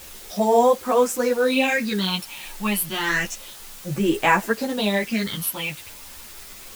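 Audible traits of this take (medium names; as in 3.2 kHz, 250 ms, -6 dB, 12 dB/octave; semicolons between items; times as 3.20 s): phasing stages 6, 0.3 Hz, lowest notch 380–4400 Hz; a quantiser's noise floor 8-bit, dither triangular; a shimmering, thickened sound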